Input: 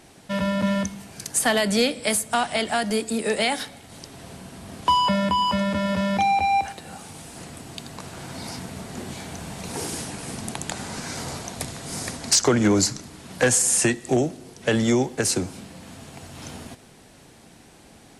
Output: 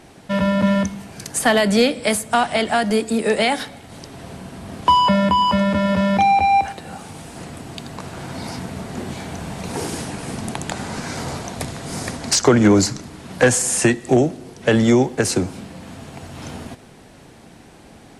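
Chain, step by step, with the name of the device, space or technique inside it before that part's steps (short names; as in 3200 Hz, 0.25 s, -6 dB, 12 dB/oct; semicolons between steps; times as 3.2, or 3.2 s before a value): behind a face mask (high shelf 3400 Hz -7.5 dB); gain +6 dB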